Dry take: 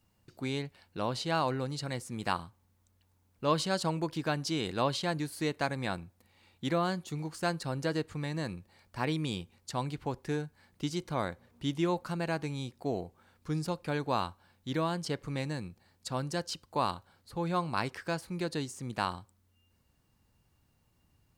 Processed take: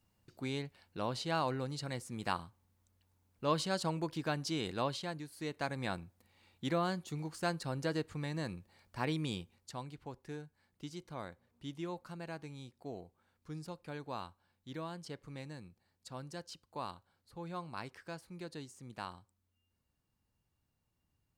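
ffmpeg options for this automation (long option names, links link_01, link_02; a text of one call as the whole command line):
ffmpeg -i in.wav -af "volume=4.5dB,afade=type=out:start_time=4.68:duration=0.6:silence=0.398107,afade=type=in:start_time=5.28:duration=0.57:silence=0.375837,afade=type=out:start_time=9.32:duration=0.54:silence=0.398107" out.wav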